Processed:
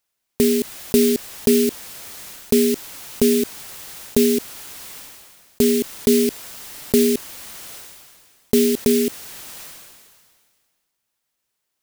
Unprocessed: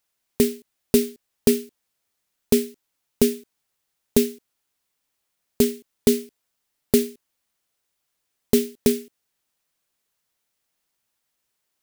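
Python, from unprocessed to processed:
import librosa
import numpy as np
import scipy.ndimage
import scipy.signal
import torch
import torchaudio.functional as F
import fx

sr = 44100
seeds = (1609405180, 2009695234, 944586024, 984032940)

y = fx.sustainer(x, sr, db_per_s=31.0)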